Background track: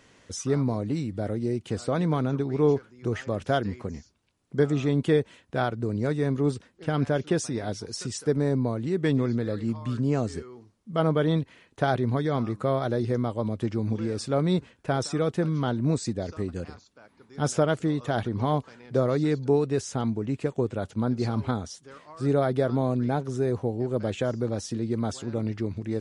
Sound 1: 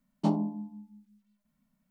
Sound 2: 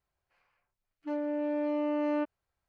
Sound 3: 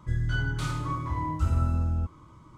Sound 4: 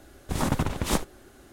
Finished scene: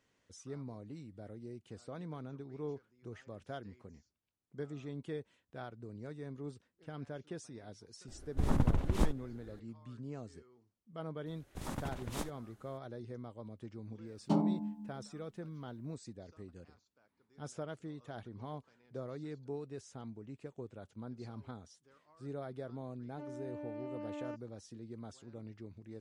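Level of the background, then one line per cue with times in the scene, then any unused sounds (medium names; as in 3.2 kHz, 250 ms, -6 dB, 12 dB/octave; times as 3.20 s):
background track -19.5 dB
8.08 s: add 4 -10.5 dB + tilt EQ -2.5 dB/octave
11.26 s: add 4 -15 dB
14.06 s: add 1 -1 dB + peak limiter -18.5 dBFS
22.11 s: add 2 -13.5 dB
not used: 3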